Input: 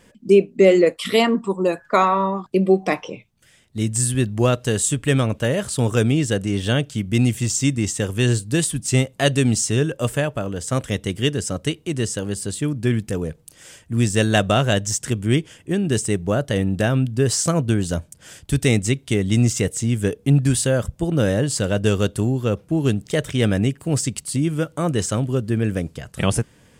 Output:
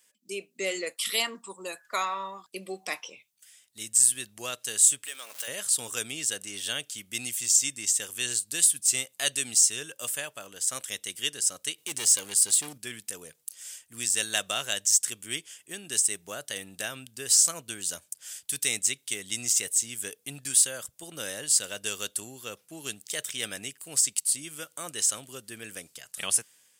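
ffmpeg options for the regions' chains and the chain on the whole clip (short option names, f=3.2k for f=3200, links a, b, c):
-filter_complex "[0:a]asettb=1/sr,asplit=3[a][b][c];[a]atrim=end=5.064[d];[b]atrim=start=5.06:end=5.48,asetpts=PTS-STARTPTS,afade=t=in:d=0.004:c=qsin,afade=t=out:st=0.416:d=0.004:c=qsin,aeval=exprs='val(0)+0.5*0.0299*sgn(val(0))':c=same,acompressor=threshold=-20dB:ratio=5:attack=3.2:release=140:knee=1:detection=peak,highpass=480[e];[c]atrim=start=5.476[f];[d][e]acrossfade=d=0.004:c1=hsin:c2=qsin[g];[g][f]acrossfade=d=0.004:c1=qsin:c2=hsin,asettb=1/sr,asplit=3[h][i][j];[h]atrim=end=11.784[k];[i]atrim=start=11.78:end=12.78,asetpts=PTS-STARTPTS,afade=t=in:d=0.004:c=qsin,afade=t=out:st=0.996:d=0.004:c=qsin,acontrast=49,asoftclip=type=hard:threshold=-15.5dB[l];[j]atrim=start=12.776[m];[k][l]acrossfade=d=0.004:c1=hsin:c2=qsin[n];[n][m]acrossfade=d=0.004:c1=qsin:c2=hsin,aderivative,dynaudnorm=f=150:g=5:m=6.5dB,volume=-3dB"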